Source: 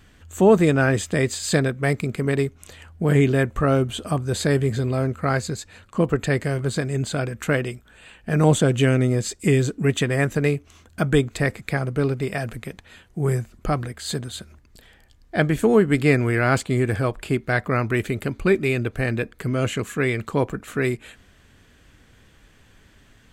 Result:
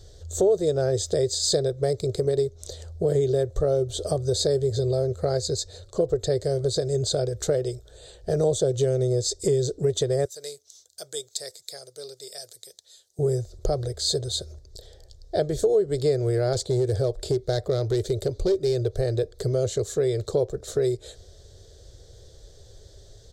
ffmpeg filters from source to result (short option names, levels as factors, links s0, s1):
-filter_complex "[0:a]asettb=1/sr,asplit=3[s0][s1][s2];[s0]atrim=end=10.254[s3];[s1]atrim=start=10.25:end=13.19,asetpts=PTS-STARTPTS,afade=t=in:d=0.004:c=qsin,afade=t=out:st=2.936:d=0.004:c=qsin,aderivative[s4];[s2]atrim=start=13.186[s5];[s3][s4]acrossfade=d=0.004:c1=hsin:c2=qsin[s6];[s6][s5]acrossfade=d=0.004:c1=qsin:c2=hsin,asettb=1/sr,asplit=3[s7][s8][s9];[s7]atrim=end=16.534[s10];[s8]atrim=start=16.53:end=18.98,asetpts=PTS-STARTPTS,afade=t=in:d=0.004:c=qsin,afade=t=out:st=2.446:d=0.004:c=qsin,volume=6.68,asoftclip=hard,volume=0.15[s11];[s9]atrim=start=18.976[s12];[s10][s11]acrossfade=d=0.004:c1=hsin:c2=qsin[s13];[s13][s12]acrossfade=d=0.004:c1=qsin:c2=hsin,firequalizer=gain_entry='entry(100,0);entry(240,-24);entry(380,2);entry(570,3);entry(960,-18);entry(1800,-19);entry(2600,-26);entry(3700,1);entry(5300,4);entry(11000,-10)':delay=0.05:min_phase=1,acompressor=threshold=0.0355:ratio=3,volume=2.24"